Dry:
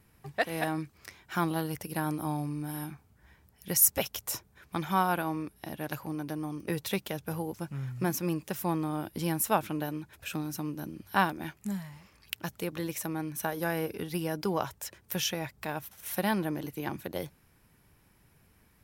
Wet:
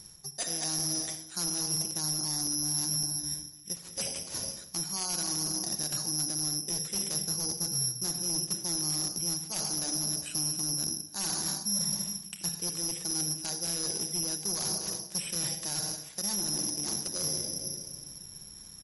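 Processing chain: shoebox room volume 2200 m³, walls mixed, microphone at 0.94 m; reverse; compressor 10:1, threshold -41 dBFS, peak gain reduction 23.5 dB; reverse; tape spacing loss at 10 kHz 25 dB; careless resampling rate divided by 8×, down none, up zero stuff; wavefolder -22 dBFS; high shelf 4000 Hz +4 dB; feedback echo 64 ms, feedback 58%, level -19 dB; crackling interface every 0.56 s, samples 128, zero, from 0.79; gain +5.5 dB; MP3 48 kbps 48000 Hz

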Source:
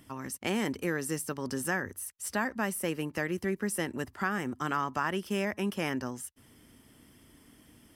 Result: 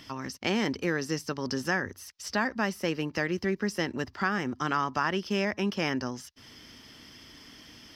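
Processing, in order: resonant high shelf 7000 Hz -11 dB, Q 3; mismatched tape noise reduction encoder only; gain +2.5 dB

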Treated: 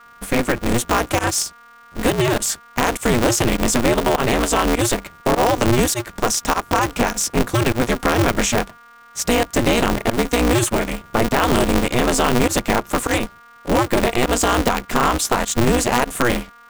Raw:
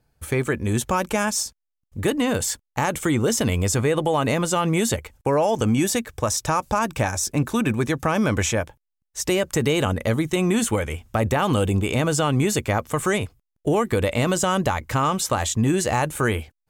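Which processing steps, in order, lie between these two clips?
pump 101 bpm, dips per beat 1, -22 dB, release 75 ms; whine 1300 Hz -47 dBFS; polarity switched at an audio rate 120 Hz; gain +4 dB

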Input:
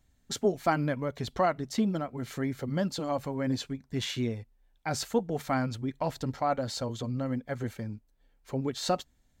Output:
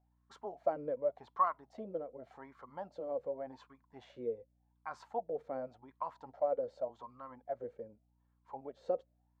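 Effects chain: wah 0.87 Hz 480–1100 Hz, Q 11; hum 60 Hz, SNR 34 dB; gain +6.5 dB

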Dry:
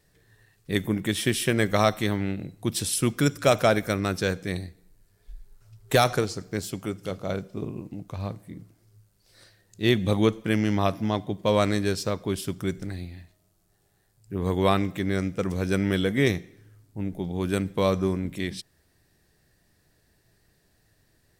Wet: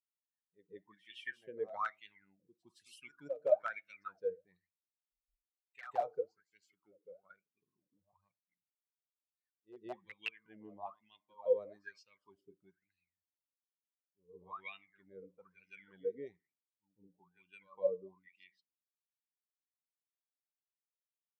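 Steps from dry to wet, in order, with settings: per-bin expansion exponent 2; on a send at -23 dB: bell 880 Hz +13.5 dB 2.5 oct + reverb RT60 0.30 s, pre-delay 5 ms; on the sum: wrapped overs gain 12.5 dB; pre-echo 0.165 s -13.5 dB; wah 1.1 Hz 450–2800 Hz, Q 20; gain +3.5 dB

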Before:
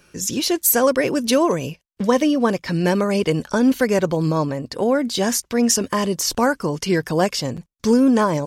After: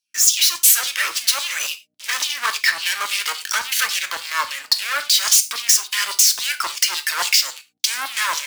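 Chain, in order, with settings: median filter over 3 samples; sample leveller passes 5; tilt shelf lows -9 dB, about 1500 Hz; de-hum 153.5 Hz, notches 5; compressor 3:1, threshold -13 dBFS, peak gain reduction 11 dB; hum 60 Hz, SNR 14 dB; LFO high-pass saw down 3.6 Hz 950–4200 Hz; HPF 69 Hz; high shelf 8800 Hz +6.5 dB; non-linear reverb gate 0.13 s falling, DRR 8 dB; three-band expander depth 40%; gain -7 dB

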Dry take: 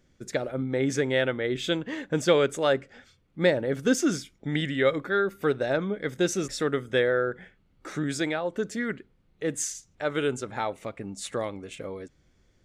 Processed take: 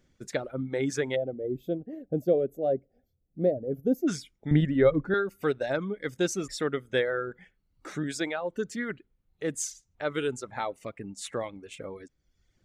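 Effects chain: 1.15–4.08 spectral gain 790–11000 Hz -26 dB; reverb removal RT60 0.84 s; 4.51–5.14 tilt -4.5 dB/oct; gain -2 dB

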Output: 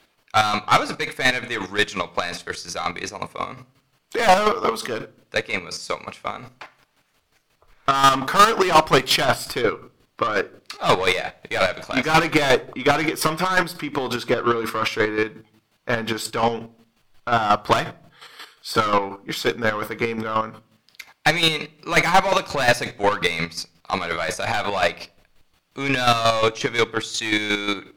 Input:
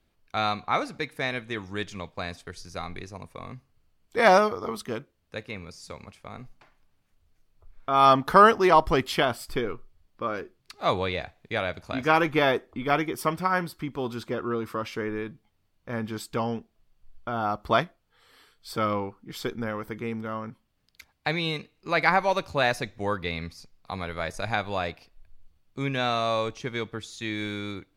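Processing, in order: overdrive pedal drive 28 dB, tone 7900 Hz, clips at -3.5 dBFS; shoebox room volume 460 m³, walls furnished, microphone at 0.43 m; chopper 5.6 Hz, depth 60%, duty 30%; gain -2 dB

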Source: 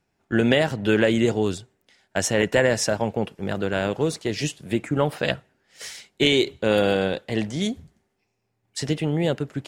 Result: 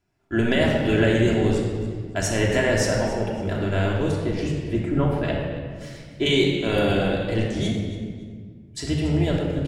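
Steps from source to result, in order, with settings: octaver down 1 oct, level -5 dB; 4.11–6.26 high shelf 2700 Hz -11.5 dB; feedback echo 0.281 s, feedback 25%, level -16 dB; reverb RT60 1.7 s, pre-delay 3 ms, DRR -3 dB; gain -5 dB

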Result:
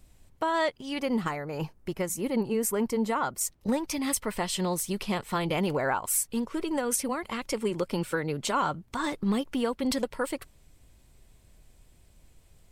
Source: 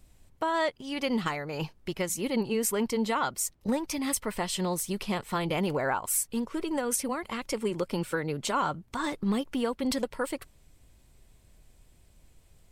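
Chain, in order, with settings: 0.99–3.41 bell 3600 Hz -8.5 dB 1.5 oct; gain +1 dB

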